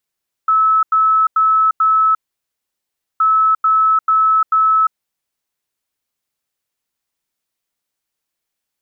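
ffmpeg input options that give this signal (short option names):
-f lavfi -i "aevalsrc='0.335*sin(2*PI*1300*t)*clip(min(mod(mod(t,2.72),0.44),0.35-mod(mod(t,2.72),0.44))/0.005,0,1)*lt(mod(t,2.72),1.76)':d=5.44:s=44100"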